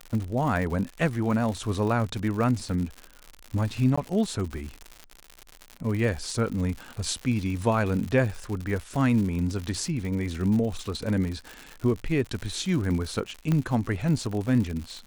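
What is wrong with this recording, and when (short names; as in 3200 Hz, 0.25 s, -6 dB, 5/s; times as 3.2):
crackle 120/s -31 dBFS
3.96–3.98 gap 15 ms
13.52 pop -14 dBFS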